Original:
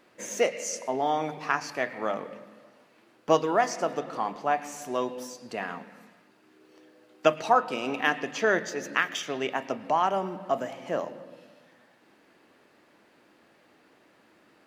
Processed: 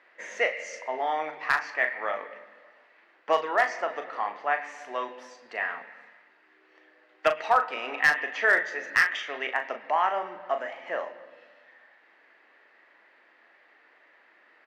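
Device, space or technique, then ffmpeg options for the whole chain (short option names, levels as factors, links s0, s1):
megaphone: -filter_complex "[0:a]highpass=600,lowpass=3100,equalizer=f=1900:t=o:w=0.43:g=10.5,asoftclip=type=hard:threshold=0.237,asplit=2[s0][s1];[s1]adelay=39,volume=0.376[s2];[s0][s2]amix=inputs=2:normalize=0"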